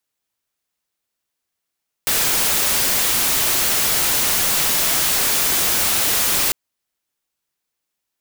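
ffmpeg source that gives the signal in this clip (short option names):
-f lavfi -i "anoisesrc=c=white:a=0.218:d=4.45:r=44100:seed=1"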